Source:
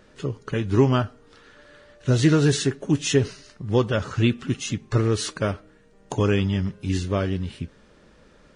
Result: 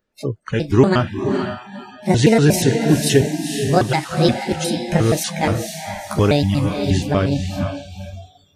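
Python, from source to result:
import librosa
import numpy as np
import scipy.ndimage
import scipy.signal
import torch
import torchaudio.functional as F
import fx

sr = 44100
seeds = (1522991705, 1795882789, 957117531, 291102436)

y = fx.pitch_trill(x, sr, semitones=6.5, every_ms=119)
y = fx.echo_diffused(y, sr, ms=478, feedback_pct=45, wet_db=-5.5)
y = fx.noise_reduce_blind(y, sr, reduce_db=27)
y = F.gain(torch.from_numpy(y), 5.5).numpy()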